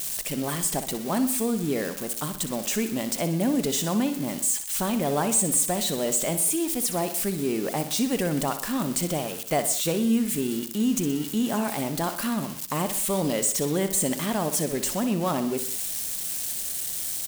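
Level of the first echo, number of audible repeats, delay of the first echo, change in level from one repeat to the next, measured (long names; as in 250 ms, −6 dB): −11.0 dB, 3, 62 ms, −5.0 dB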